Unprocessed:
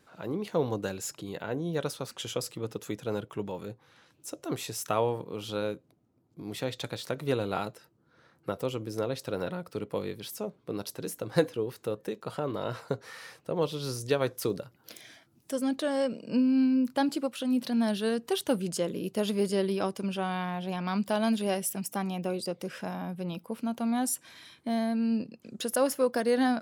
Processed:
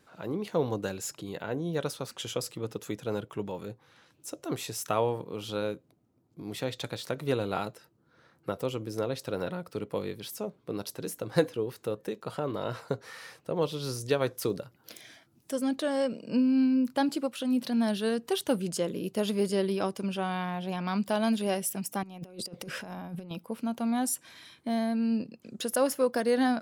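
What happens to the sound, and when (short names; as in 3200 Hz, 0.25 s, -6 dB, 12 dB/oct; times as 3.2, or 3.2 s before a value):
22.03–23.31 negative-ratio compressor -39 dBFS, ratio -0.5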